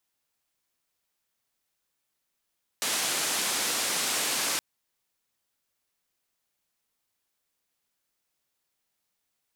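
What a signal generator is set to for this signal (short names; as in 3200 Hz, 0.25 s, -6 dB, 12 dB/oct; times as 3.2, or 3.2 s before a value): noise band 220–9800 Hz, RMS -28.5 dBFS 1.77 s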